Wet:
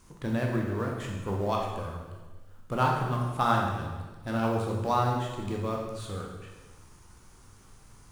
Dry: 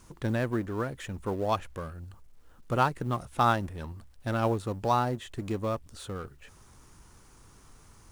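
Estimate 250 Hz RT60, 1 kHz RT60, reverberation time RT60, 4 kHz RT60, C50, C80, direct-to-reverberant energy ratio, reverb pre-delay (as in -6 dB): 1.4 s, 1.2 s, 1.3 s, 1.2 s, 3.0 dB, 5.0 dB, -1.0 dB, 15 ms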